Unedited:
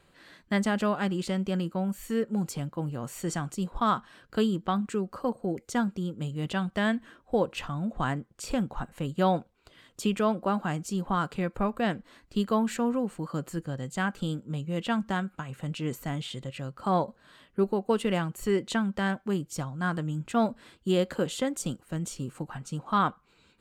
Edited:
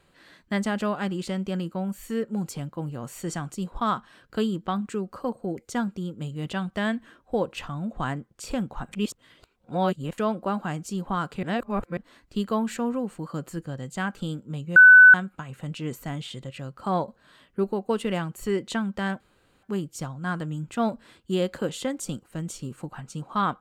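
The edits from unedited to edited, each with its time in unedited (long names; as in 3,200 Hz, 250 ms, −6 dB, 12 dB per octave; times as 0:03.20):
0:08.93–0:10.18: reverse
0:11.43–0:11.97: reverse
0:14.76–0:15.14: beep over 1,500 Hz −7 dBFS
0:19.20: splice in room tone 0.43 s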